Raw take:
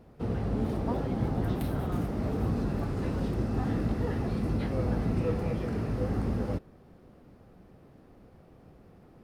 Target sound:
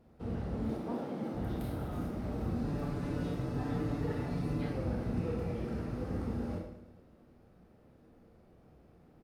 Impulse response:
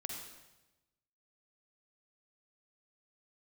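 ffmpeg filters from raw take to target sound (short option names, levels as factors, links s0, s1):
-filter_complex "[0:a]asettb=1/sr,asplit=3[s0][s1][s2];[s0]atrim=end=0.714[s3];[s1]atrim=start=0.71:end=1.34,asetpts=PTS-STARTPTS,afade=t=in:d=0.004:c=qsin,afade=t=out:st=0.626:d=0.004:c=qsin,highpass=f=170:w=0.5412,highpass=f=170:w=1.3066[s4];[s2]atrim=start=1.336[s5];[s3][s4]acrossfade=d=0.004:c1=hsin:c2=qsin[s6];[s6][s5]acrossfade=d=0.004:c1=qsin:c2=hsin,asettb=1/sr,asplit=3[s7][s8][s9];[s7]atrim=end=2.644[s10];[s8]atrim=start=2.64:end=4.73,asetpts=PTS-STARTPTS,afade=t=in:d=0.004:c=qsin,afade=t=out:st=2.086:d=0.004:c=qsin,aecho=1:1:6.9:0.86,atrim=end_sample=92169[s11];[s9]atrim=start=4.726[s12];[s10][s11]acrossfade=d=0.004:c1=hsin:c2=qsin[s13];[s13][s12]acrossfade=d=0.004:c1=qsin:c2=hsin,aecho=1:1:109|218|327|436|545|654:0.2|0.114|0.0648|0.037|0.0211|0.012[s14];[1:a]atrim=start_sample=2205,asetrate=83790,aresample=44100[s15];[s14][s15]afir=irnorm=-1:irlink=0"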